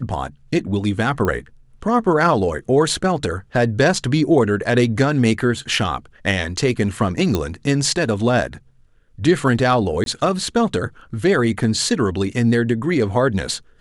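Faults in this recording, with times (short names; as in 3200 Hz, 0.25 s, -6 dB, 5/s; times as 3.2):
1.25 pop -10 dBFS
7.35 pop -7 dBFS
10.04–10.06 gap 22 ms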